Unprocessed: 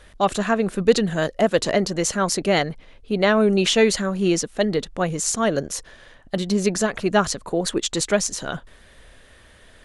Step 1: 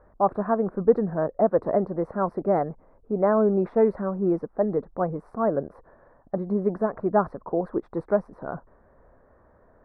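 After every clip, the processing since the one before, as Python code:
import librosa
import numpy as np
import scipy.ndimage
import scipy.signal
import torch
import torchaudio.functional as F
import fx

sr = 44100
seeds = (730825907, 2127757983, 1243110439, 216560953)

y = scipy.signal.sosfilt(scipy.signal.cheby2(4, 50, 2800.0, 'lowpass', fs=sr, output='sos'), x)
y = fx.tilt_eq(y, sr, slope=2.0)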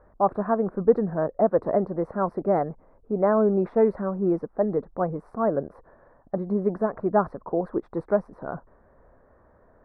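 y = x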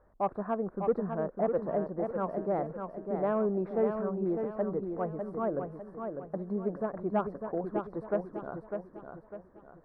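y = 10.0 ** (-9.0 / 20.0) * np.tanh(x / 10.0 ** (-9.0 / 20.0))
y = fx.echo_feedback(y, sr, ms=601, feedback_pct=40, wet_db=-6)
y = y * 10.0 ** (-8.0 / 20.0)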